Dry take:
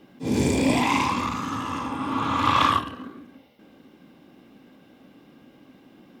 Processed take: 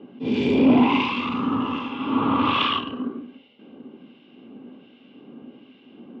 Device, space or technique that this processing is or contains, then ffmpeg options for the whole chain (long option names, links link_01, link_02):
guitar amplifier with harmonic tremolo: -filter_complex "[0:a]acrossover=split=1600[link_01][link_02];[link_01]aeval=exprs='val(0)*(1-0.7/2+0.7/2*cos(2*PI*1.3*n/s))':channel_layout=same[link_03];[link_02]aeval=exprs='val(0)*(1-0.7/2-0.7/2*cos(2*PI*1.3*n/s))':channel_layout=same[link_04];[link_03][link_04]amix=inputs=2:normalize=0,asoftclip=type=tanh:threshold=-18.5dB,highpass=110,equalizer=frequency=240:width_type=q:width=4:gain=9,equalizer=frequency=410:width_type=q:width=4:gain=9,equalizer=frequency=1800:width_type=q:width=4:gain=-8,equalizer=frequency=2900:width_type=q:width=4:gain=9,lowpass=frequency=3500:width=0.5412,lowpass=frequency=3500:width=1.3066,volume=4dB"